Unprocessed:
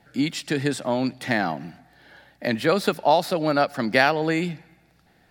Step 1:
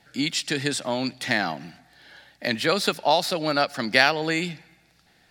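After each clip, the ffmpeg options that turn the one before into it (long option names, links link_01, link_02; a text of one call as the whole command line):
ffmpeg -i in.wav -af "equalizer=frequency=5300:width_type=o:width=3:gain=10.5,volume=-4dB" out.wav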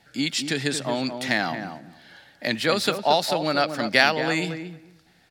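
ffmpeg -i in.wav -filter_complex "[0:a]asplit=2[link_01][link_02];[link_02]adelay=227,lowpass=frequency=1000:poles=1,volume=-6.5dB,asplit=2[link_03][link_04];[link_04]adelay=227,lowpass=frequency=1000:poles=1,volume=0.17,asplit=2[link_05][link_06];[link_06]adelay=227,lowpass=frequency=1000:poles=1,volume=0.17[link_07];[link_01][link_03][link_05][link_07]amix=inputs=4:normalize=0" out.wav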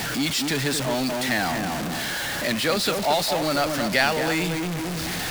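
ffmpeg -i in.wav -af "aeval=exprs='val(0)+0.5*0.133*sgn(val(0))':channel_layout=same,volume=-5dB" out.wav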